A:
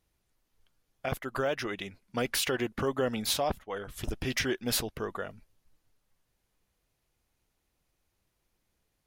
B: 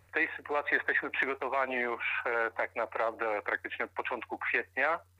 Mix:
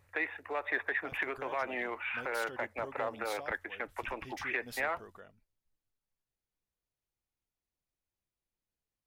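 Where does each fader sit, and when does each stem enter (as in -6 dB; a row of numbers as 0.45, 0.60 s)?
-16.5, -4.5 dB; 0.00, 0.00 s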